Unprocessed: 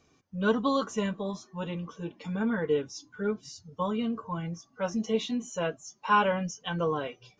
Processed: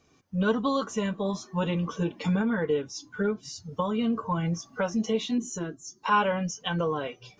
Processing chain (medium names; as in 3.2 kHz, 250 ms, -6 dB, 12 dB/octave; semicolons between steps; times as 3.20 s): recorder AGC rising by 19 dB/s; 5.38–6.06 s: FFT filter 220 Hz 0 dB, 360 Hz +7 dB, 530 Hz -15 dB, 1.7 kHz -6 dB, 2.5 kHz -17 dB, 4.5 kHz -1 dB